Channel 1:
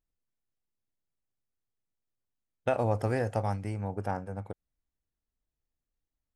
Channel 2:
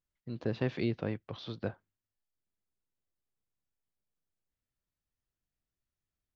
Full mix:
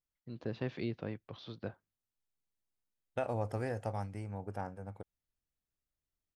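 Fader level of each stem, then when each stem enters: -7.5 dB, -5.5 dB; 0.50 s, 0.00 s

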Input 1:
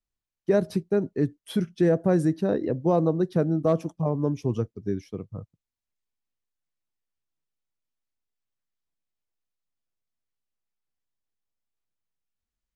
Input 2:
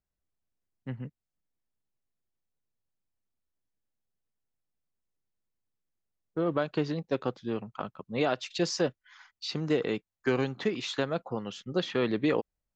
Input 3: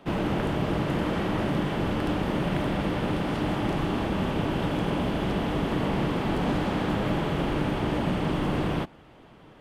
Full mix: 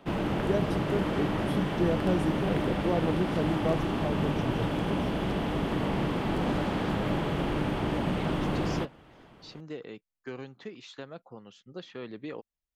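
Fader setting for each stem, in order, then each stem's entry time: -7.0 dB, -12.5 dB, -2.5 dB; 0.00 s, 0.00 s, 0.00 s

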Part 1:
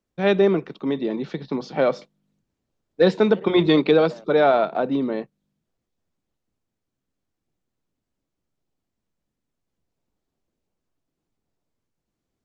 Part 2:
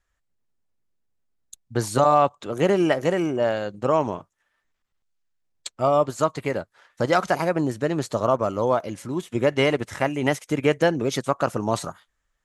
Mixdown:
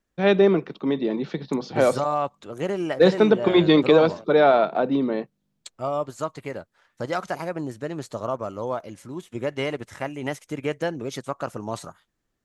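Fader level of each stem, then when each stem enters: +0.5 dB, -7.0 dB; 0.00 s, 0.00 s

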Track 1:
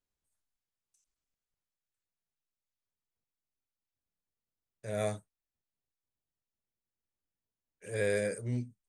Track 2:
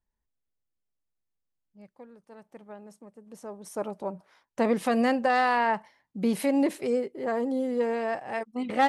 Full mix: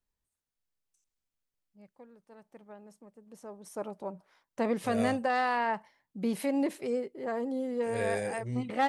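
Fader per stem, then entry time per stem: -2.0 dB, -5.0 dB; 0.00 s, 0.00 s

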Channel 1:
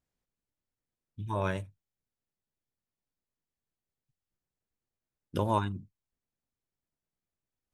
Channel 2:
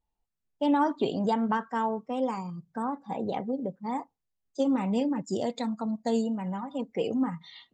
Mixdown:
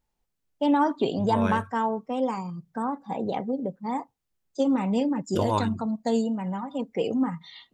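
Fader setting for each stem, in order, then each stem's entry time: +2.5 dB, +2.5 dB; 0.00 s, 0.00 s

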